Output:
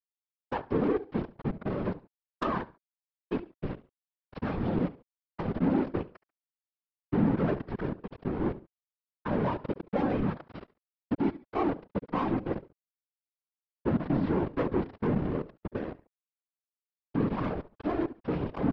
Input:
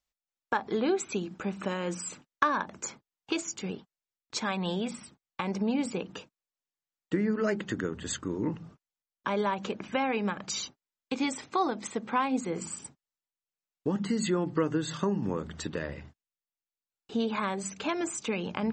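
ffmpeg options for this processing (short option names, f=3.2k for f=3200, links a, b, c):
-filter_complex "[0:a]aresample=11025,acrusher=bits=4:mix=0:aa=0.000001,aresample=44100,lowpass=2.1k,tiltshelf=f=940:g=9.5,asplit=2[a][b];[b]aecho=0:1:70|140:0.1|0.028[c];[a][c]amix=inputs=2:normalize=0,asoftclip=type=tanh:threshold=-21.5dB,afftfilt=real='hypot(re,im)*cos(2*PI*random(0))':imag='hypot(re,im)*sin(2*PI*random(1))':win_size=512:overlap=0.75,volume=4.5dB"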